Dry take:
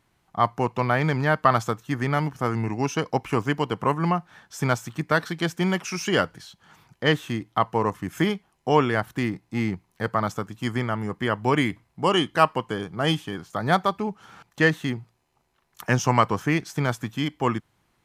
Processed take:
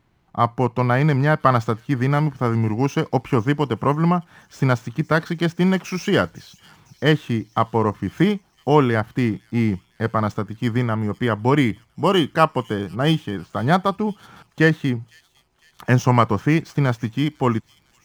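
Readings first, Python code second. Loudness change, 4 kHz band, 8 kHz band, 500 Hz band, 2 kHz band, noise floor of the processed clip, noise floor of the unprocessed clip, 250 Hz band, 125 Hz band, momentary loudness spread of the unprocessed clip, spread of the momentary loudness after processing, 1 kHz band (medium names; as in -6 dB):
+4.0 dB, +0.5 dB, -3.0 dB, +4.0 dB, +1.0 dB, -61 dBFS, -70 dBFS, +6.0 dB, +7.0 dB, 8 LU, 7 LU, +2.0 dB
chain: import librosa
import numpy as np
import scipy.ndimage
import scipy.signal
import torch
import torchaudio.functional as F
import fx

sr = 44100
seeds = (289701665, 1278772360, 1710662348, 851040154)

p1 = scipy.ndimage.median_filter(x, 5, mode='constant')
p2 = fx.low_shelf(p1, sr, hz=430.0, db=6.5)
p3 = p2 + fx.echo_wet_highpass(p2, sr, ms=505, feedback_pct=58, hz=5200.0, wet_db=-13, dry=0)
y = p3 * 10.0 ** (1.0 / 20.0)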